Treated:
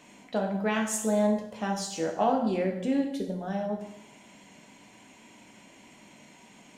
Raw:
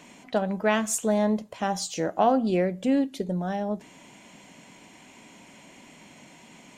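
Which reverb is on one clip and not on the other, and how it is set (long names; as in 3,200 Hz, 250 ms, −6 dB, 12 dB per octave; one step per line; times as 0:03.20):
dense smooth reverb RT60 0.82 s, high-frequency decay 0.85×, DRR 1.5 dB
level −5.5 dB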